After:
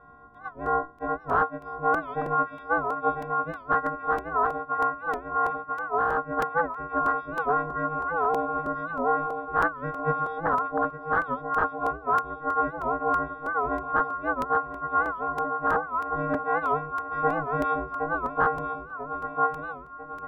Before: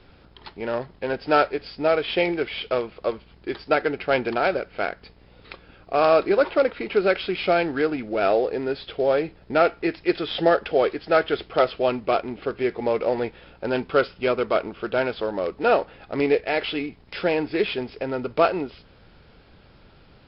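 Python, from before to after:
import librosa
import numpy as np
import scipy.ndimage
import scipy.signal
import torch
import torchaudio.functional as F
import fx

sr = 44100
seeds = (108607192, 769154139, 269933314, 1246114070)

y = fx.freq_snap(x, sr, grid_st=6)
y = fx.echo_feedback(y, sr, ms=994, feedback_pct=57, wet_db=-8.5)
y = (np.mod(10.0 ** (7.0 / 20.0) * y + 1.0, 2.0) - 1.0) / 10.0 ** (7.0 / 20.0)
y = fx.curve_eq(y, sr, hz=(450.0, 1400.0, 2200.0), db=(0, 11, -27))
y = fx.rider(y, sr, range_db=5, speed_s=0.5)
y = scipy.signal.sosfilt(scipy.signal.butter(4, 3400.0, 'lowpass', fs=sr, output='sos'), y)
y = y * np.sin(2.0 * np.pi * 160.0 * np.arange(len(y)) / sr)
y = fx.buffer_crackle(y, sr, first_s=0.34, period_s=0.32, block=128, kind='repeat')
y = fx.record_warp(y, sr, rpm=78.0, depth_cents=160.0)
y = y * librosa.db_to_amplitude(-7.5)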